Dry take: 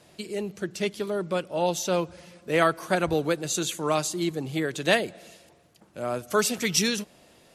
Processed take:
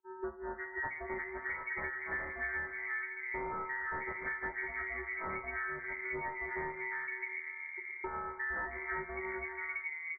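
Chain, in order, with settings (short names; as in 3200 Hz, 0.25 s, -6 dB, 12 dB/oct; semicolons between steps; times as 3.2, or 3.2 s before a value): frequency quantiser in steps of 6 st; low shelf 310 Hz -5.5 dB; gate -45 dBFS, range -49 dB; transient shaper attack +9 dB, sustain -9 dB; one-sided clip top -30 dBFS, bottom -18.5 dBFS; three bands offset in time highs, mids, lows 0.26/0.49 s, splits 330/1200 Hz; reverb RT60 1.4 s, pre-delay 20 ms, DRR 8 dB; inverted band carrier 3000 Hz; speed mistake 45 rpm record played at 33 rpm; three-band squash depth 100%; gain -8 dB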